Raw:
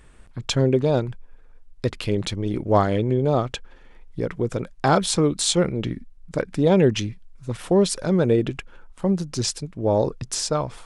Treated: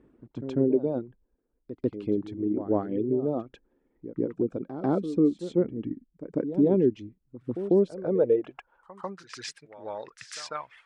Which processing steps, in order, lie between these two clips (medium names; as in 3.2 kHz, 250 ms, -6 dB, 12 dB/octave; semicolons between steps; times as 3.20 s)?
reverb removal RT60 1.7 s; in parallel at -2 dB: compression, threshold -26 dBFS, peak gain reduction 13 dB; on the sum: band-pass sweep 300 Hz -> 1.9 kHz, 7.76–9.49 s; vibrato 2 Hz 9.5 cents; pre-echo 145 ms -12 dB